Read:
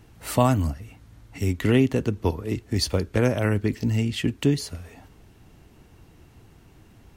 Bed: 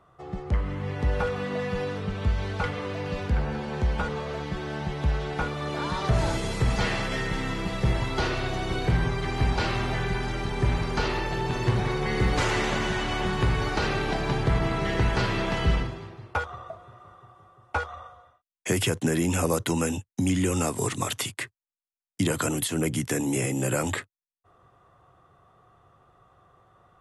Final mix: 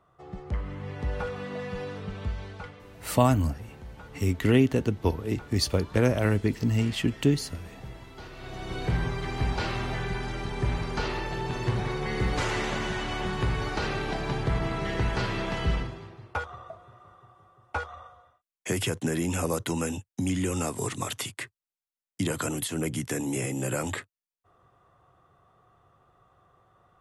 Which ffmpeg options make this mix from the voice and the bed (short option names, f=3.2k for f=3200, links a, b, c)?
-filter_complex "[0:a]adelay=2800,volume=-1.5dB[a];[1:a]volume=9dB,afade=t=out:st=2.15:d=0.66:silence=0.237137,afade=t=in:st=8.32:d=0.59:silence=0.188365[b];[a][b]amix=inputs=2:normalize=0"